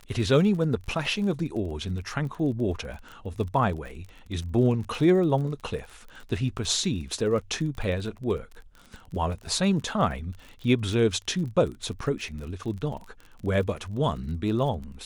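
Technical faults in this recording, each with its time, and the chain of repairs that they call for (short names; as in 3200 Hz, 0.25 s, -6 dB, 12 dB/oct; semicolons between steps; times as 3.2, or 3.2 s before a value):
crackle 40/s -35 dBFS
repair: de-click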